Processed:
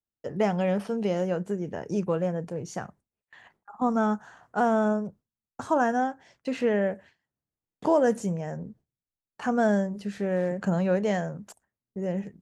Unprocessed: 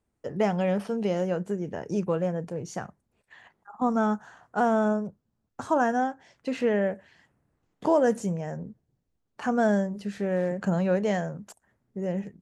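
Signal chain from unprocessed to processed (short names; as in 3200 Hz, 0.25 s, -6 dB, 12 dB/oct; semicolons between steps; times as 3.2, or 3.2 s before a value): gate with hold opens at -45 dBFS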